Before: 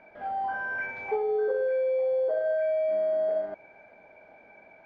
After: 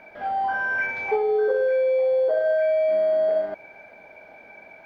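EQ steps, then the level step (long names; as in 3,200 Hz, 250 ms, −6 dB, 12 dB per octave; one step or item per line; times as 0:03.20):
high-shelf EQ 2,500 Hz +8.5 dB
+5.0 dB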